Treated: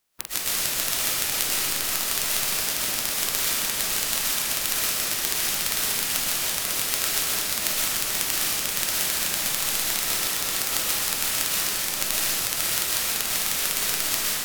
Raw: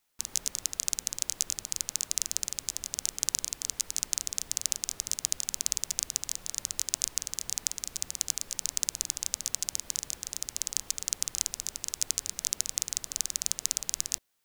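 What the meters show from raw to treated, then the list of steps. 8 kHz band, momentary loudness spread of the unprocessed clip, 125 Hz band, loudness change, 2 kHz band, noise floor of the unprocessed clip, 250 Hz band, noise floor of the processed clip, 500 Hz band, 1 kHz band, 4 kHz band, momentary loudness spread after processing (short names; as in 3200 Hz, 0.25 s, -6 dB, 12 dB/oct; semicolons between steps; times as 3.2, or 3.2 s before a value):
+4.5 dB, 4 LU, +11.0 dB, +8.5 dB, +19.0 dB, -53 dBFS, +15.0 dB, -28 dBFS, +17.5 dB, +19.5 dB, +10.0 dB, 1 LU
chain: spectral limiter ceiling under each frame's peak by 22 dB; vocal rider 0.5 s; digital reverb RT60 2.3 s, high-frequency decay 0.95×, pre-delay 85 ms, DRR -9 dB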